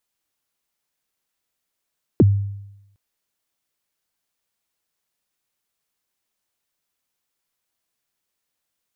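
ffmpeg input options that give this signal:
-f lavfi -i "aevalsrc='0.447*pow(10,-3*t/0.89)*sin(2*PI*(440*0.032/log(100/440)*(exp(log(100/440)*min(t,0.032)/0.032)-1)+100*max(t-0.032,0)))':d=0.76:s=44100"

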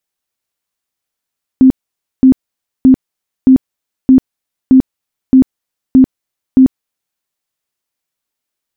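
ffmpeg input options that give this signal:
-f lavfi -i "aevalsrc='0.841*sin(2*PI*261*mod(t,0.62))*lt(mod(t,0.62),24/261)':d=5.58:s=44100"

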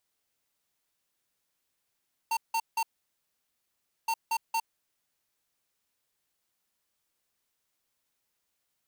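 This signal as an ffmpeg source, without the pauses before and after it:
-f lavfi -i "aevalsrc='0.0398*(2*lt(mod(908*t,1),0.5)-1)*clip(min(mod(mod(t,1.77),0.23),0.06-mod(mod(t,1.77),0.23))/0.005,0,1)*lt(mod(t,1.77),0.69)':d=3.54:s=44100"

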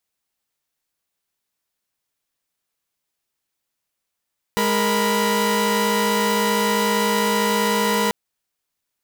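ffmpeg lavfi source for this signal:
-f lavfi -i "aevalsrc='0.106*((2*mod(207.65*t,1)-1)+(2*mod(466.16*t,1)-1)+(2*mod(987.77*t,1)-1))':d=3.54:s=44100"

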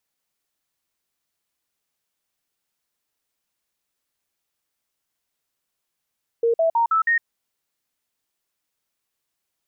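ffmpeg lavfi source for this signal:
-f lavfi -i "aevalsrc='0.168*clip(min(mod(t,0.16),0.11-mod(t,0.16))/0.005,0,1)*sin(2*PI*464*pow(2,floor(t/0.16)/2)*mod(t,0.16))':d=0.8:s=44100"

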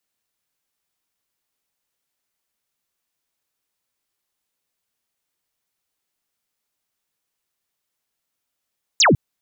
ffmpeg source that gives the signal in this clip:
-f lavfi -i "aevalsrc='0.299*clip(t/0.002,0,1)*clip((0.15-t)/0.002,0,1)*sin(2*PI*7700*0.15/log(100/7700)*(exp(log(100/7700)*t/0.15)-1))':d=0.15:s=44100"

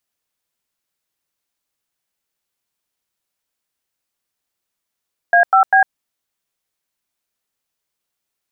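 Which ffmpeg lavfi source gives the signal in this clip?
-f lavfi -i "aevalsrc='0.299*clip(min(mod(t,0.198),0.103-mod(t,0.198))/0.002,0,1)*(eq(floor(t/0.198),0)*(sin(2*PI*697*mod(t,0.198))+sin(2*PI*1633*mod(t,0.198)))+eq(floor(t/0.198),1)*(sin(2*PI*770*mod(t,0.198))+sin(2*PI*1336*mod(t,0.198)))+eq(floor(t/0.198),2)*(sin(2*PI*770*mod(t,0.198))+sin(2*PI*1633*mod(t,0.198))))':d=0.594:s=44100"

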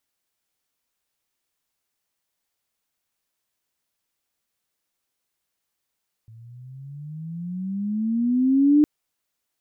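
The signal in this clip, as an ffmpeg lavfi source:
-f lavfi -i "aevalsrc='pow(10,(-11.5+31*(t/2.56-1))/20)*sin(2*PI*110*2.56/(17.5*log(2)/12)*(exp(17.5*log(2)/12*t/2.56)-1))':d=2.56:s=44100"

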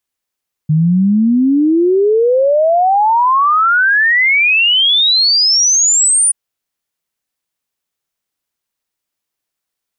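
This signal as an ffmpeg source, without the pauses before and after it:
-f lavfi -i "aevalsrc='0.398*clip(min(t,5.63-t)/0.01,0,1)*sin(2*PI*150*5.63/log(9600/150)*(exp(log(9600/150)*t/5.63)-1))':d=5.63:s=44100"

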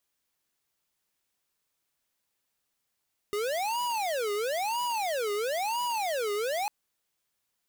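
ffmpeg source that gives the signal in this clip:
-f lavfi -i "aevalsrc='0.0316*(2*lt(mod((692.5*t-284.5/(2*PI*1)*sin(2*PI*1*t)),1),0.5)-1)':d=3.35:s=44100"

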